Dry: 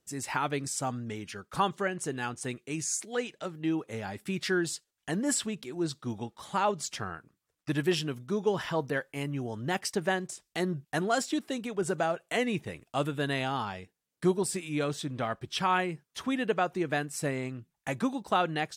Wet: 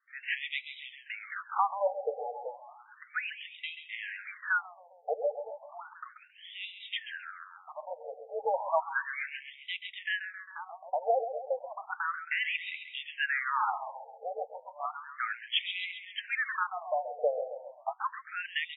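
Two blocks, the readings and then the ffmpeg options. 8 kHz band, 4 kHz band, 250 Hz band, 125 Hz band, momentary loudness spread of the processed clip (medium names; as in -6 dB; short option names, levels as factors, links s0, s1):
under -40 dB, -0.5 dB, under -40 dB, under -40 dB, 14 LU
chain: -af "afftfilt=real='re*between(b*sr/4096,440,4000)':imag='im*between(b*sr/4096,440,4000)':win_size=4096:overlap=0.75,alimiter=limit=0.0708:level=0:latency=1:release=166,aecho=1:1:134|268|402|536|670|804|938:0.316|0.187|0.11|0.0649|0.0383|0.0226|0.0133,afftfilt=real='re*between(b*sr/1024,590*pow(2800/590,0.5+0.5*sin(2*PI*0.33*pts/sr))/1.41,590*pow(2800/590,0.5+0.5*sin(2*PI*0.33*pts/sr))*1.41)':imag='im*between(b*sr/1024,590*pow(2800/590,0.5+0.5*sin(2*PI*0.33*pts/sr))/1.41,590*pow(2800/590,0.5+0.5*sin(2*PI*0.33*pts/sr))*1.41)':win_size=1024:overlap=0.75,volume=2.51"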